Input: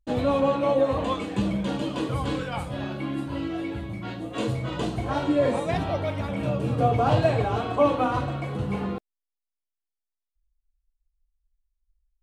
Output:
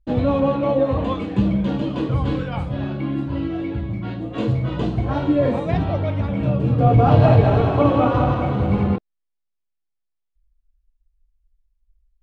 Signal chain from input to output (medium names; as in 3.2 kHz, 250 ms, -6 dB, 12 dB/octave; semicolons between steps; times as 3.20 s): 6.76–8.96 s: backward echo that repeats 106 ms, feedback 70%, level -2.5 dB; low-pass 4.2 kHz 12 dB/octave; bass shelf 320 Hz +10 dB